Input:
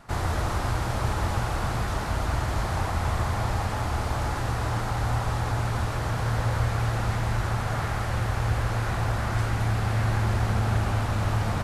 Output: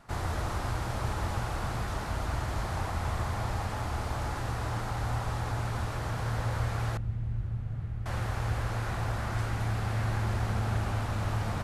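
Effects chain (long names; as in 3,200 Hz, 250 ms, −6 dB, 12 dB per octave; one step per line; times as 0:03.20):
0:06.97–0:08.06: drawn EQ curve 130 Hz 0 dB, 930 Hz −22 dB, 2,800 Hz −18 dB, 5,200 Hz −25 dB
level −5.5 dB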